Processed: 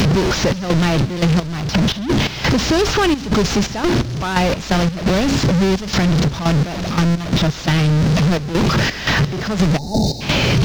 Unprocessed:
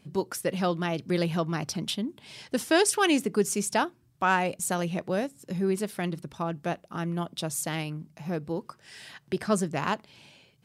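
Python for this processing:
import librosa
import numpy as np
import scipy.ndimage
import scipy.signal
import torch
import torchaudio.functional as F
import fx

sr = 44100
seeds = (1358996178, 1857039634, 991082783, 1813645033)

p1 = fx.delta_mod(x, sr, bps=32000, step_db=-23.5)
p2 = fx.low_shelf(p1, sr, hz=240.0, db=10.5)
p3 = fx.leveller(p2, sr, passes=3)
p4 = fx.add_hum(p3, sr, base_hz=60, snr_db=15)
p5 = np.where(np.abs(p4) >= 10.0 ** (-22.0 / 20.0), p4, 0.0)
p6 = p4 + (p5 * librosa.db_to_amplitude(-11.0))
p7 = fx.step_gate(p6, sr, bpm=86, pattern='xxx.xx.x..x.x.x', floor_db=-12.0, edge_ms=4.5)
p8 = p7 + fx.echo_wet_highpass(p7, sr, ms=67, feedback_pct=74, hz=2800.0, wet_db=-18, dry=0)
p9 = fx.spec_box(p8, sr, start_s=9.78, length_s=0.43, low_hz=890.0, high_hz=3600.0, gain_db=-29)
p10 = fx.band_squash(p9, sr, depth_pct=70)
y = p10 * librosa.db_to_amplitude(-2.5)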